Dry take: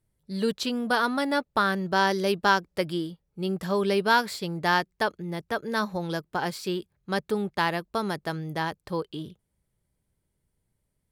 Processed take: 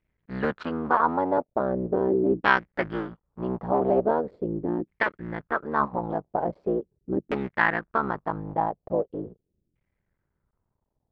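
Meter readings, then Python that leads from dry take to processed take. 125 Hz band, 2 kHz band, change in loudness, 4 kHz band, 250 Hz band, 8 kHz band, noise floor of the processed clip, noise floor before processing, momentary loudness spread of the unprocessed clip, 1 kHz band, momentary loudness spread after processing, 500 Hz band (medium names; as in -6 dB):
-1.0 dB, -0.5 dB, +0.5 dB, -13.0 dB, +0.5 dB, under -25 dB, -80 dBFS, -78 dBFS, 10 LU, +0.5 dB, 9 LU, +2.5 dB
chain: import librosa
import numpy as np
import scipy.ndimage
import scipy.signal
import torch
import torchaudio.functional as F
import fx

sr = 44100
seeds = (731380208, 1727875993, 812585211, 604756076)

y = fx.cycle_switch(x, sr, every=3, mode='muted')
y = fx.filter_lfo_lowpass(y, sr, shape='saw_down', hz=0.41, low_hz=300.0, high_hz=2400.0, q=3.2)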